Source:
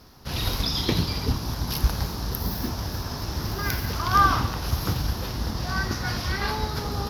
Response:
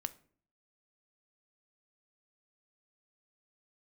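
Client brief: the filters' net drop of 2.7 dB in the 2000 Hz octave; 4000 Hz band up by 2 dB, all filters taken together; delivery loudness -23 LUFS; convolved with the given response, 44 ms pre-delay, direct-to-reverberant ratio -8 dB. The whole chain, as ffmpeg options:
-filter_complex "[0:a]equalizer=f=2k:t=o:g=-4.5,equalizer=f=4k:t=o:g=3.5,asplit=2[a][b];[1:a]atrim=start_sample=2205,adelay=44[c];[b][c]afir=irnorm=-1:irlink=0,volume=9.5dB[d];[a][d]amix=inputs=2:normalize=0,volume=-6.5dB"

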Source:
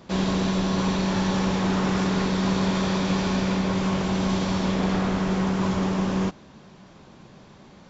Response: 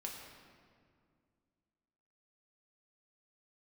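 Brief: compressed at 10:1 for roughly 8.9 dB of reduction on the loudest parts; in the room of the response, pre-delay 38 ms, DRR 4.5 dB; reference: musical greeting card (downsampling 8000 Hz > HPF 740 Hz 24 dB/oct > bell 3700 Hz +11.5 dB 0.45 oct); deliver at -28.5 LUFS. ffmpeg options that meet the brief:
-filter_complex "[0:a]acompressor=threshold=-29dB:ratio=10,asplit=2[a][b];[1:a]atrim=start_sample=2205,adelay=38[c];[b][c]afir=irnorm=-1:irlink=0,volume=-3dB[d];[a][d]amix=inputs=2:normalize=0,aresample=8000,aresample=44100,highpass=f=740:w=0.5412,highpass=f=740:w=1.3066,equalizer=f=3.7k:t=o:w=0.45:g=11.5,volume=8.5dB"

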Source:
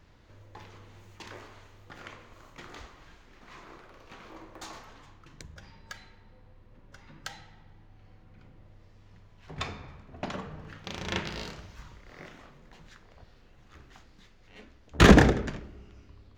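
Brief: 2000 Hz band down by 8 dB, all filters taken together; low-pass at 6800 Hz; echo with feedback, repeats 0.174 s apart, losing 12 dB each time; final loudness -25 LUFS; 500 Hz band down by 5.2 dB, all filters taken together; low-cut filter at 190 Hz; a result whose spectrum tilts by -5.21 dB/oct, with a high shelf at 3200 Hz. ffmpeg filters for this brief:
-af "highpass=190,lowpass=6.8k,equalizer=f=500:t=o:g=-6,equalizer=f=2k:t=o:g=-7,highshelf=f=3.2k:g=-9,aecho=1:1:174|348|522:0.251|0.0628|0.0157,volume=5.5dB"

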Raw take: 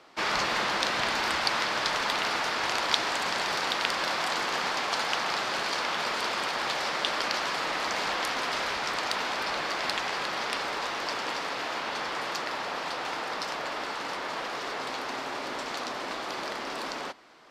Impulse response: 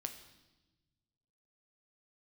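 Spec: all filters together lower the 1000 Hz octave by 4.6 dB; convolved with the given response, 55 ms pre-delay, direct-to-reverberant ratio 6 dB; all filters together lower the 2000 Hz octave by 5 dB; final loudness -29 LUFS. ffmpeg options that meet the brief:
-filter_complex "[0:a]equalizer=f=1k:t=o:g=-4.5,equalizer=f=2k:t=o:g=-5,asplit=2[a][b];[1:a]atrim=start_sample=2205,adelay=55[c];[b][c]afir=irnorm=-1:irlink=0,volume=-4dB[d];[a][d]amix=inputs=2:normalize=0,volume=2dB"

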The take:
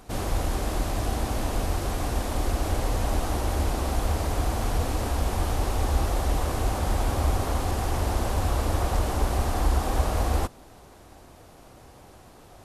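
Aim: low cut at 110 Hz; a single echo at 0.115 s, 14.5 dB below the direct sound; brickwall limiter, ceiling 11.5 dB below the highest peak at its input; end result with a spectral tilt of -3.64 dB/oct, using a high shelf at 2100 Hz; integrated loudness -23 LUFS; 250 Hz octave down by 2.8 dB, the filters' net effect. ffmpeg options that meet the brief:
-af "highpass=110,equalizer=f=250:t=o:g=-3.5,highshelf=f=2.1k:g=5.5,alimiter=level_in=2.5dB:limit=-24dB:level=0:latency=1,volume=-2.5dB,aecho=1:1:115:0.188,volume=12dB"

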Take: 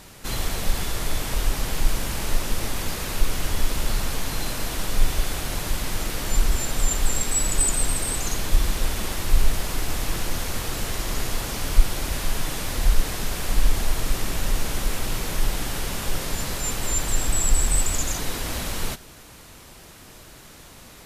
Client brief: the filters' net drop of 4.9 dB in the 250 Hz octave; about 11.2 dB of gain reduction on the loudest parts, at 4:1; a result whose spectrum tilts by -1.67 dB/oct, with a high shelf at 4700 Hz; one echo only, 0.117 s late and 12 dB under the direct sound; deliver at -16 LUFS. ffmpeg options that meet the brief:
-af "equalizer=f=250:t=o:g=-7,highshelf=f=4.7k:g=7,acompressor=threshold=-21dB:ratio=4,aecho=1:1:117:0.251,volume=10.5dB"

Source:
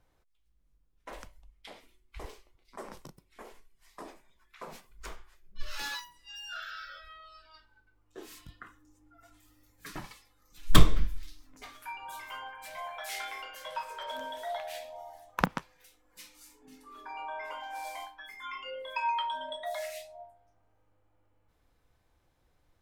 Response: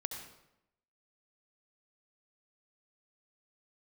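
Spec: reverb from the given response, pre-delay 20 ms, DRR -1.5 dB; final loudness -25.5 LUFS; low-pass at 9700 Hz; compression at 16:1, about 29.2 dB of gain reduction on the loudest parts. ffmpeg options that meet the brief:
-filter_complex "[0:a]lowpass=9.7k,acompressor=threshold=-38dB:ratio=16,asplit=2[a][b];[1:a]atrim=start_sample=2205,adelay=20[c];[b][c]afir=irnorm=-1:irlink=0,volume=1.5dB[d];[a][d]amix=inputs=2:normalize=0,volume=16dB"

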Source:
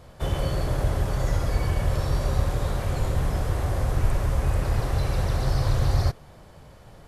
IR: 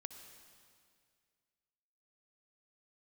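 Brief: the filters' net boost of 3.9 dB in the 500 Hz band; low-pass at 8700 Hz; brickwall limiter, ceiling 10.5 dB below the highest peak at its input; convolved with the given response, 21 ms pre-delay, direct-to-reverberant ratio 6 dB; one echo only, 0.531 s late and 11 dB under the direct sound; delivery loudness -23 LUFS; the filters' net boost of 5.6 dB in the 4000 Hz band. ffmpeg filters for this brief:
-filter_complex "[0:a]lowpass=8.7k,equalizer=f=500:t=o:g=4.5,equalizer=f=4k:t=o:g=7,alimiter=limit=-19.5dB:level=0:latency=1,aecho=1:1:531:0.282,asplit=2[a][b];[1:a]atrim=start_sample=2205,adelay=21[c];[b][c]afir=irnorm=-1:irlink=0,volume=-2dB[d];[a][d]amix=inputs=2:normalize=0,volume=5.5dB"

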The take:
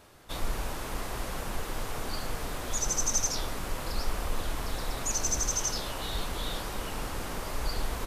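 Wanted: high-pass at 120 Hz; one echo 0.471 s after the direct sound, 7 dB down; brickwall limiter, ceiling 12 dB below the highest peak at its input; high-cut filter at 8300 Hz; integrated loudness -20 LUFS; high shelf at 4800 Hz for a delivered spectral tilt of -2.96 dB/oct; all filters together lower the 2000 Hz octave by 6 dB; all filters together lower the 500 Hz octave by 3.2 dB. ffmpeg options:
-af "highpass=120,lowpass=8.3k,equalizer=f=500:t=o:g=-3.5,equalizer=f=2k:t=o:g=-7,highshelf=f=4.8k:g=-4.5,alimiter=level_in=8dB:limit=-24dB:level=0:latency=1,volume=-8dB,aecho=1:1:471:0.447,volume=20dB"

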